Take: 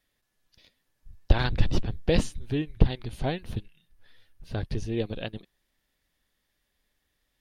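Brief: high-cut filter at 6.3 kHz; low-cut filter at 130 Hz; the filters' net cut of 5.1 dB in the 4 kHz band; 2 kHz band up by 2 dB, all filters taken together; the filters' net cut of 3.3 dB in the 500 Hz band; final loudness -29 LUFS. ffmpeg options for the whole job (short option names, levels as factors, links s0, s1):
-af "highpass=130,lowpass=6300,equalizer=f=500:t=o:g=-4,equalizer=f=2000:t=o:g=5,equalizer=f=4000:t=o:g=-8,volume=1.58"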